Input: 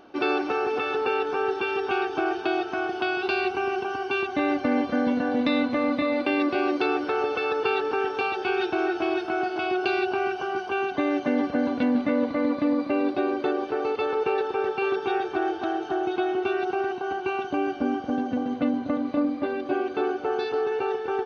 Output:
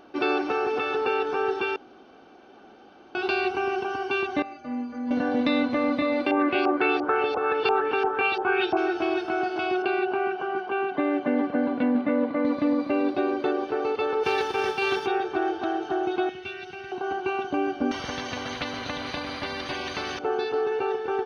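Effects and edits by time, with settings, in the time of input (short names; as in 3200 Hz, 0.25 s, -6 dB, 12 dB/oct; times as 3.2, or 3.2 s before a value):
1.76–3.15 room tone
4.42–5.11 metallic resonator 72 Hz, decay 0.7 s, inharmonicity 0.03
6.31–8.77 LFO low-pass saw up 2.9 Hz 810–5100 Hz
9.82–12.45 BPF 140–2500 Hz
14.23–15.05 spectral whitening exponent 0.6
16.29–16.92 band shelf 580 Hz -14.5 dB 2.8 oct
17.91–20.19 spectral compressor 4:1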